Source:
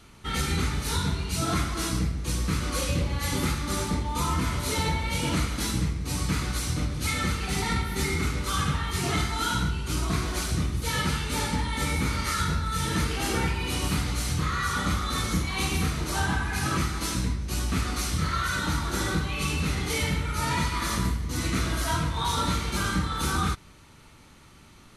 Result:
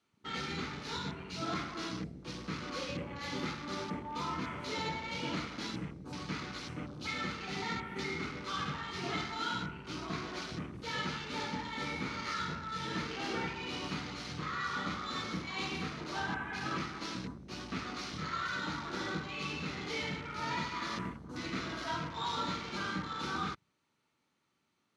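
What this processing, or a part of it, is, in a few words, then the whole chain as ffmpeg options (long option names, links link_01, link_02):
over-cleaned archive recording: -af "highpass=190,lowpass=7400,afwtdn=0.01,volume=-7.5dB"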